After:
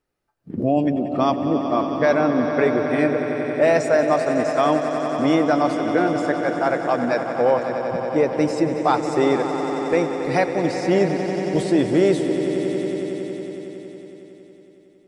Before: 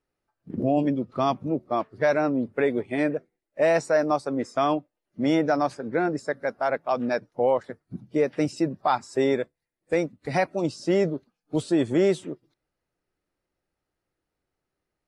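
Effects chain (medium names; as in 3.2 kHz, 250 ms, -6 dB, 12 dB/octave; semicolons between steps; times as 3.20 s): echo with a slow build-up 92 ms, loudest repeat 5, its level -12 dB; trim +3.5 dB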